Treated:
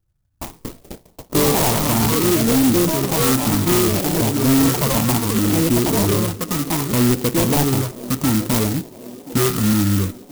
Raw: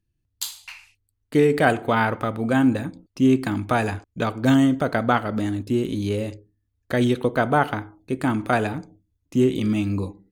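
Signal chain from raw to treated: in parallel at -4 dB: backlash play -33.5 dBFS; on the sum: echoes that change speed 0.337 s, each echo +5 st, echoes 3; band shelf 3700 Hz -13.5 dB 2.7 oct; sample-rate reducer 1600 Hz, jitter 0%; LFO notch saw up 0.64 Hz 230–3200 Hz; on a send: band-limited delay 1.027 s, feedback 63%, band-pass 400 Hz, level -21 dB; on the sum: soft clip -17 dBFS, distortion -8 dB; dynamic EQ 660 Hz, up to -6 dB, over -38 dBFS, Q 1.3; clock jitter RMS 0.13 ms; gain +6 dB

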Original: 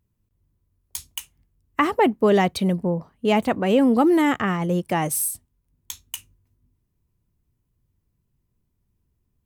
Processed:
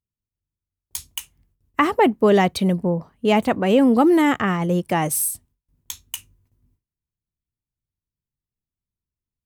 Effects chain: gate with hold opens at -58 dBFS; gain +2 dB

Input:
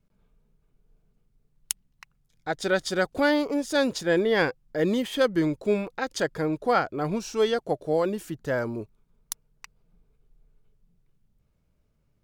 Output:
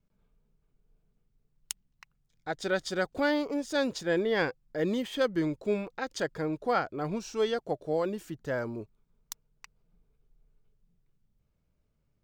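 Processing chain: bell 11000 Hz -9.5 dB 0.37 oct; gain -5 dB

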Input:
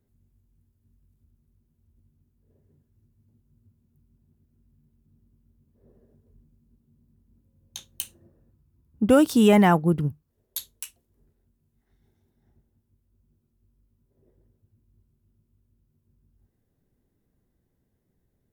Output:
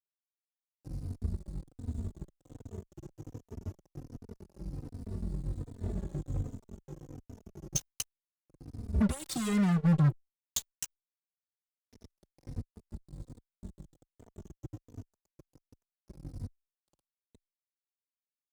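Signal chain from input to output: moving spectral ripple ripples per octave 0.9, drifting -0.26 Hz, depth 10 dB; recorder AGC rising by 38 dB/s; EQ curve 170 Hz 0 dB, 280 Hz -14 dB, 910 Hz -22 dB, 6800 Hz +2 dB, 15000 Hz -20 dB; fuzz box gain 24 dB, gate -31 dBFS; endless flanger 3.2 ms -1.3 Hz; gain -7 dB

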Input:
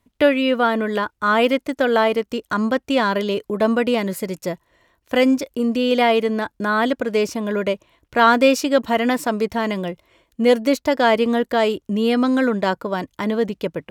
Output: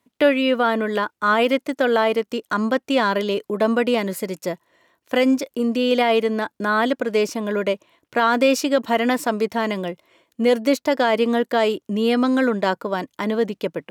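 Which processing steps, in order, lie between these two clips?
HPF 180 Hz 12 dB/oct; limiter -7.5 dBFS, peak gain reduction 5.5 dB

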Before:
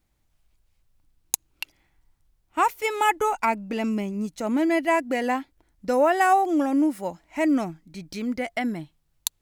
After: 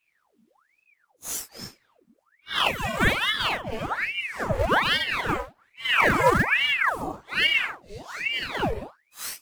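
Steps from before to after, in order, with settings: phase scrambler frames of 0.2 s; in parallel at -12 dB: decimation with a swept rate 12×, swing 160% 3.5 Hz; on the sum: ring modulator with a swept carrier 1400 Hz, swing 85%, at 1.2 Hz

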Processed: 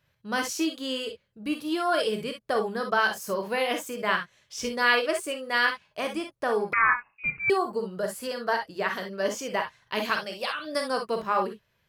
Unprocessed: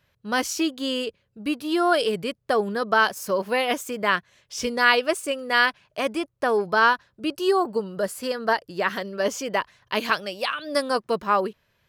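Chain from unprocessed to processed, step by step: non-linear reverb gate 80 ms rising, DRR 4 dB; 6.73–7.5 inverted band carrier 2700 Hz; gain -5 dB

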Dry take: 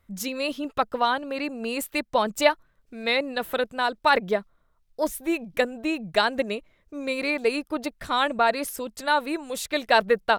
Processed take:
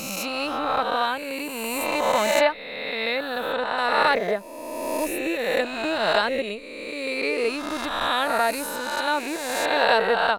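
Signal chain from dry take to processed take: spectral swells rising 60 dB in 1.96 s; 2.39–3.78 high shelf 5700 Hz -9.5 dB; gain -4 dB

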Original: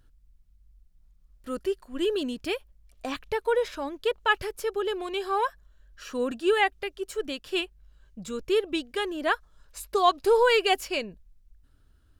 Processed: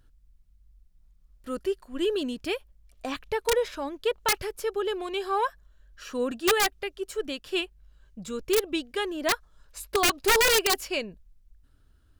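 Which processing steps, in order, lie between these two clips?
wrapped overs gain 15.5 dB

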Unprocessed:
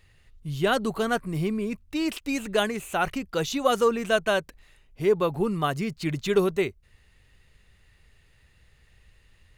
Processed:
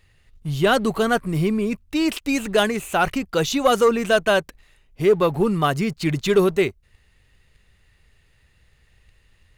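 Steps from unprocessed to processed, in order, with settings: sample leveller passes 1; gain +2.5 dB

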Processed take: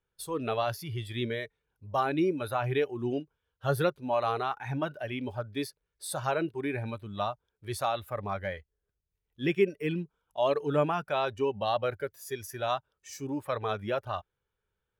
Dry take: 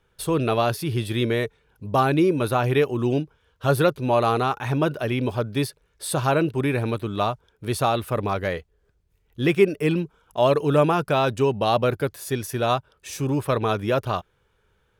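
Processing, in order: spectral noise reduction 11 dB; 11.23–11.84 bell 7000 Hz -12.5 dB 0.31 oct; gain -7.5 dB

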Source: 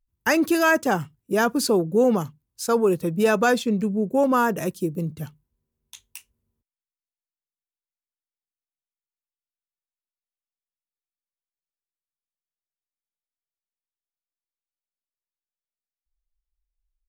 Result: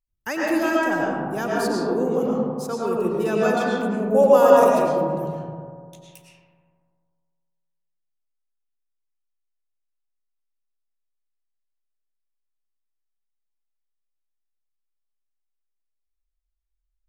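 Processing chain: 3.72–4.82 EQ curve 330 Hz 0 dB, 560 Hz +13 dB, 1500 Hz +1 dB, 3100 Hz +9 dB; analogue delay 0.1 s, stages 1024, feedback 70%, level -9 dB; reverb RT60 1.7 s, pre-delay 70 ms, DRR -5 dB; gain -8.5 dB

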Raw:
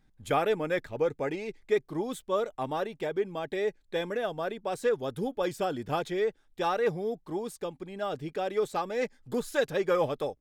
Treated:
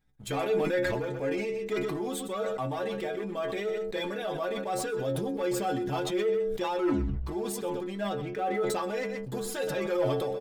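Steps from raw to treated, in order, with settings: 8.13–8.7 LPF 3000 Hz 24 dB/oct; sample leveller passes 2; 6.7 tape stop 0.56 s; compressor 2:1, threshold -33 dBFS, peak gain reduction 8.5 dB; metallic resonator 65 Hz, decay 0.37 s, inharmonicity 0.008; echo 0.124 s -15 dB; sustainer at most 23 dB/s; gain +6.5 dB

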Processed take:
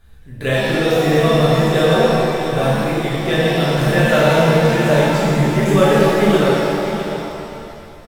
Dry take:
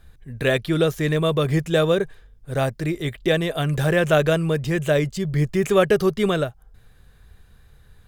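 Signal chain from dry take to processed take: echo 0.654 s -10 dB; shimmer reverb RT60 2.4 s, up +7 st, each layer -8 dB, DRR -8 dB; gain -3 dB

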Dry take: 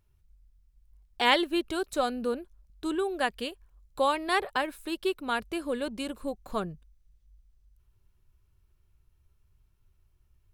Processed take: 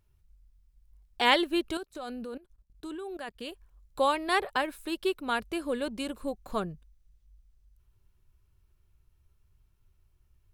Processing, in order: 1.77–3.49 level quantiser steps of 19 dB

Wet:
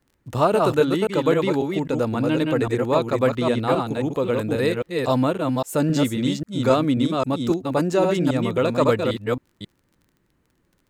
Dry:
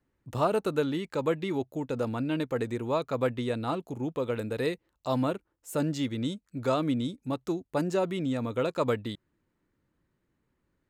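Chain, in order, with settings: reverse delay 0.268 s, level -3 dB; crackle 28/s -53 dBFS; gain +7.5 dB

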